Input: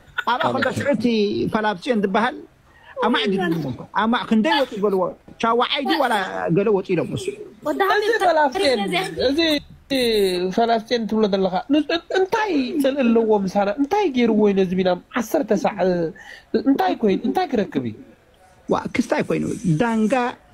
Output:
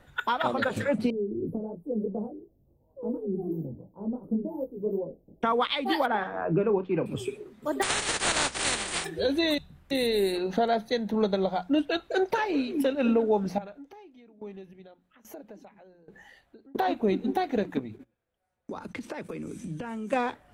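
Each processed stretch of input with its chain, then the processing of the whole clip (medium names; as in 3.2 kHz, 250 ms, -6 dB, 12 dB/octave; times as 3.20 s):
1.10–5.43 s: inverse Chebyshev band-stop 1.8–6.4 kHz, stop band 70 dB + peaking EQ 6.4 kHz +9 dB 2.6 oct + chorus 2.8 Hz, delay 18.5 ms, depth 4.9 ms
6.06–7.06 s: low-pass 1.9 kHz + doubling 32 ms -13 dB
7.81–9.04 s: spectral contrast reduction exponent 0.15 + Chebyshev low-pass 9.6 kHz, order 10
13.58–16.75 s: compression 2.5:1, threshold -37 dBFS + sawtooth tremolo in dB decaying 1.2 Hz, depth 19 dB
17.79–20.13 s: compression 4:1, threshold -27 dBFS + gate -41 dBFS, range -23 dB
whole clip: peaking EQ 5.6 kHz -4 dB 0.83 oct; hum notches 60/120/180 Hz; trim -7 dB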